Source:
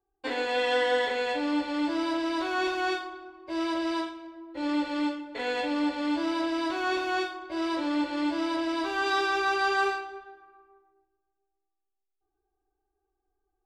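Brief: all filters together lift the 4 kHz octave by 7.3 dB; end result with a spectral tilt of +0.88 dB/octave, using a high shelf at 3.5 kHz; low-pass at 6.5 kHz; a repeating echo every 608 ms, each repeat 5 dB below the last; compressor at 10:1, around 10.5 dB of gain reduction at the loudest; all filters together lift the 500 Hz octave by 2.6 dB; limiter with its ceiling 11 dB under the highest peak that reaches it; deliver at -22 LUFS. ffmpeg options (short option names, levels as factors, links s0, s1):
-af "lowpass=6500,equalizer=f=500:t=o:g=3,highshelf=f=3500:g=7.5,equalizer=f=4000:t=o:g=4.5,acompressor=threshold=0.0316:ratio=10,alimiter=level_in=2.11:limit=0.0631:level=0:latency=1,volume=0.473,aecho=1:1:608|1216|1824|2432|3040|3648|4256:0.562|0.315|0.176|0.0988|0.0553|0.031|0.0173,volume=5.31"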